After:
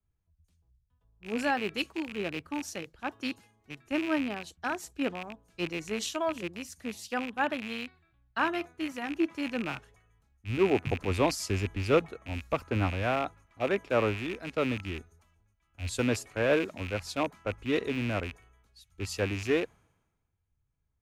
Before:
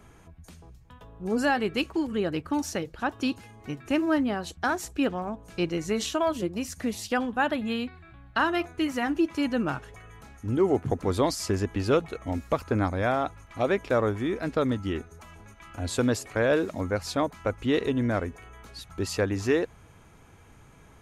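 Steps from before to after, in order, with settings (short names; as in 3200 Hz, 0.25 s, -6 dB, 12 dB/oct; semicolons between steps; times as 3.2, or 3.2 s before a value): rattling part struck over -35 dBFS, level -20 dBFS; three-band expander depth 100%; gain -5.5 dB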